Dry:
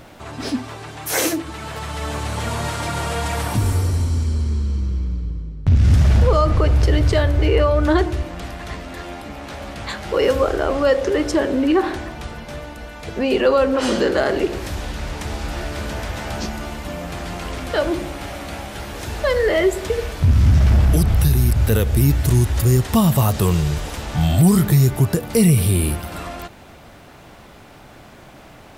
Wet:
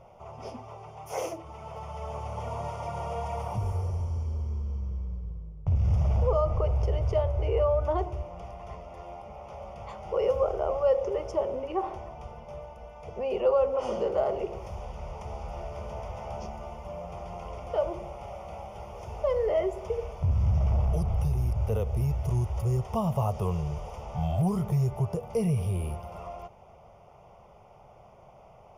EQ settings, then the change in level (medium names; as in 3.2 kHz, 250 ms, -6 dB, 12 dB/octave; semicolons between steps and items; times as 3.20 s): boxcar filter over 11 samples; bass shelf 150 Hz -6.5 dB; static phaser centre 690 Hz, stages 4; -5.0 dB